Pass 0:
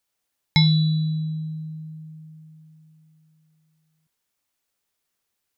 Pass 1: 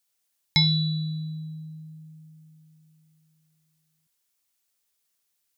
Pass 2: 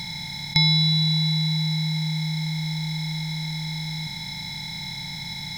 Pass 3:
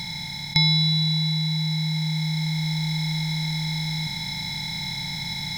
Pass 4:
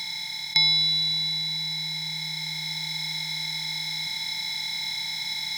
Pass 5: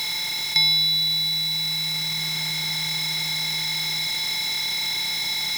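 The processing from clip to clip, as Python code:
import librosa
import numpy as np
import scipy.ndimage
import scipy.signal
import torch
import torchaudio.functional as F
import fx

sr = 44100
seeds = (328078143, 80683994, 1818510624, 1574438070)

y1 = fx.high_shelf(x, sr, hz=2900.0, db=10.5)
y1 = y1 * librosa.db_to_amplitude(-6.0)
y2 = fx.bin_compress(y1, sr, power=0.2)
y3 = fx.rider(y2, sr, range_db=3, speed_s=2.0)
y4 = fx.highpass(y3, sr, hz=1400.0, slope=6)
y4 = y4 * librosa.db_to_amplitude(1.5)
y5 = y4 + 0.5 * 10.0 ** (-26.0 / 20.0) * np.sign(y4)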